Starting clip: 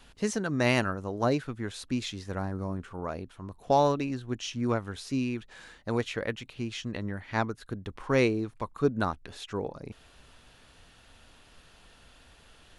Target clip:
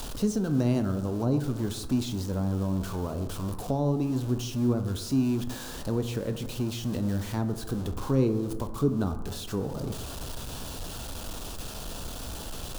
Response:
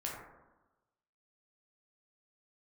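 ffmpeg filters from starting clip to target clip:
-filter_complex "[0:a]aeval=exprs='val(0)+0.5*0.0237*sgn(val(0))':c=same,equalizer=f=2k:t=o:w=0.91:g=-14,acrossover=split=360[a][b];[b]acompressor=threshold=-40dB:ratio=4[c];[a][c]amix=inputs=2:normalize=0,asplit=2[d][e];[1:a]atrim=start_sample=2205[f];[e][f]afir=irnorm=-1:irlink=0,volume=-5dB[g];[d][g]amix=inputs=2:normalize=0"

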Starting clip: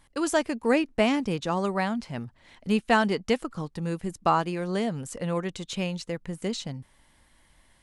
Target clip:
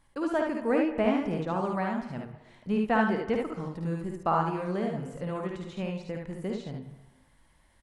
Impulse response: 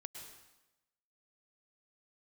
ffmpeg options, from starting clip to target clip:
-filter_complex "[0:a]acrossover=split=2900[a][b];[b]acompressor=threshold=-49dB:ratio=4:attack=1:release=60[c];[a][c]amix=inputs=2:normalize=0,aecho=1:1:54|73:0.501|0.668,asplit=2[d][e];[1:a]atrim=start_sample=2205,lowpass=2.1k[f];[e][f]afir=irnorm=-1:irlink=0,volume=0.5dB[g];[d][g]amix=inputs=2:normalize=0,volume=-8dB"

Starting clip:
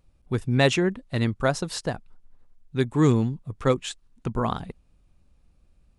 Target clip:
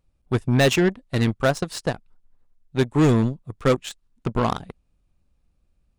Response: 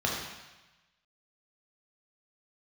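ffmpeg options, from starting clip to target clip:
-af "aeval=exprs='0.447*sin(PI/2*1.58*val(0)/0.447)':c=same,aeval=exprs='0.473*(cos(1*acos(clip(val(0)/0.473,-1,1)))-cos(1*PI/2))+0.0473*(cos(7*acos(clip(val(0)/0.473,-1,1)))-cos(7*PI/2))':c=same,volume=-3.5dB"

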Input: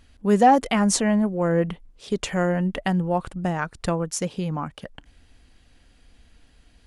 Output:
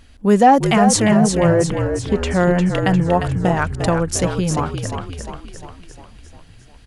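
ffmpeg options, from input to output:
-filter_complex "[0:a]asettb=1/sr,asplit=3[a][b][c];[a]atrim=end=1.164[d];[b]atrim=start=1.16:end=2.4,asetpts=PTS-STARTPTS,afade=t=in:d=0.004:c=qsin,afade=t=out:st=1.236:d=0.004:c=qsin,lowpass=f=2.5k:p=1[e];[c]atrim=start=2.396[f];[d][e]acrossfade=d=0.004:c1=hsin:c2=qsin[g];[g][f]acrossfade=d=0.004:c1=qsin:c2=hsin,asplit=2[h][i];[i]alimiter=limit=-14.5dB:level=0:latency=1:release=310,volume=-1dB[j];[h][j]amix=inputs=2:normalize=0,asplit=8[k][l][m][n][o][p][q][r];[l]adelay=352,afreqshift=-47,volume=-6.5dB[s];[m]adelay=704,afreqshift=-94,volume=-11.4dB[t];[n]adelay=1056,afreqshift=-141,volume=-16.3dB[u];[o]adelay=1408,afreqshift=-188,volume=-21.1dB[v];[p]adelay=1760,afreqshift=-235,volume=-26dB[w];[q]adelay=2112,afreqshift=-282,volume=-30.9dB[x];[r]adelay=2464,afreqshift=-329,volume=-35.8dB[y];[k][s][t][u][v][w][x][y]amix=inputs=8:normalize=0,volume=1.5dB"

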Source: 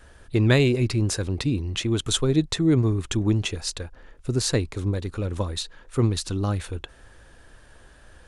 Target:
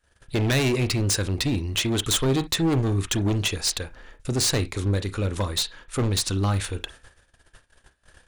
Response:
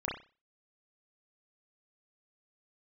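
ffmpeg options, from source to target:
-filter_complex "[0:a]agate=range=-26dB:threshold=-46dB:ratio=16:detection=peak,tiltshelf=f=1.4k:g=-4,volume=24dB,asoftclip=hard,volume=-24dB,asplit=2[a][b];[1:a]atrim=start_sample=2205,atrim=end_sample=3528[c];[b][c]afir=irnorm=-1:irlink=0,volume=-14.5dB[d];[a][d]amix=inputs=2:normalize=0,volume=3.5dB"

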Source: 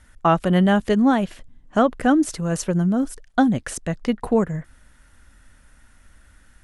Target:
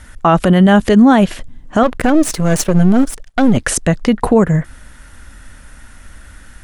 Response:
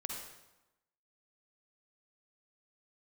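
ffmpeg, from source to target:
-filter_complex "[0:a]asettb=1/sr,asplit=3[a][b][c];[a]atrim=end=1.834[d];[b]atrim=start=1.83:end=3.57,asetpts=PTS-STARTPTS,afade=t=in:d=0.004:c=qsin,afade=t=out:st=1.736:d=0.004:c=qsin,aeval=exprs='if(lt(val(0),0),0.251*val(0),val(0))':c=same[e];[c]atrim=start=3.566[f];[d][e]acrossfade=d=0.004:c1=hsin:c2=qsin[g];[g][f]acrossfade=d=0.004:c1=qsin:c2=hsin,alimiter=level_in=15dB:limit=-1dB:release=50:level=0:latency=1,volume=-1dB"

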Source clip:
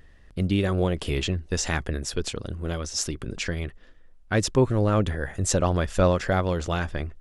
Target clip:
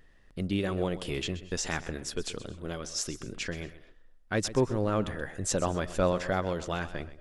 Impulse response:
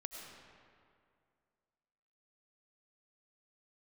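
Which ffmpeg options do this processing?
-filter_complex "[0:a]equalizer=f=66:t=o:w=1.3:g=-9.5,asplit=2[a][b];[1:a]atrim=start_sample=2205,afade=t=out:st=0.19:d=0.01,atrim=end_sample=8820,adelay=128[c];[b][c]afir=irnorm=-1:irlink=0,volume=-10dB[d];[a][d]amix=inputs=2:normalize=0,volume=-5dB"

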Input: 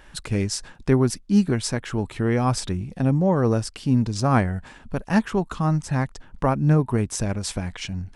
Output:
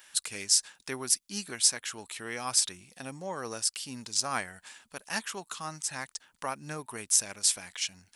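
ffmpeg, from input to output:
-af "aderivative,volume=7dB"

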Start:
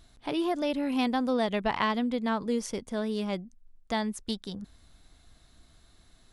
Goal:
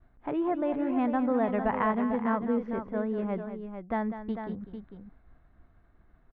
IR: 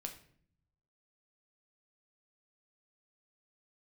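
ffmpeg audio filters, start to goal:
-filter_complex "[0:a]agate=range=-33dB:threshold=-54dB:ratio=3:detection=peak,lowpass=f=1.8k:w=0.5412,lowpass=f=1.8k:w=1.3066,asplit=2[a][b];[b]aecho=0:1:198|448:0.282|0.376[c];[a][c]amix=inputs=2:normalize=0"

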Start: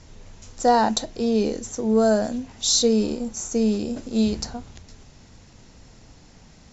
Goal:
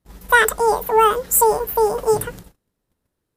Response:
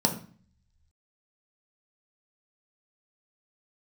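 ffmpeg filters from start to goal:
-af "asetrate=88200,aresample=44100,agate=range=-33dB:threshold=-42dB:ratio=16:detection=peak,volume=5dB"

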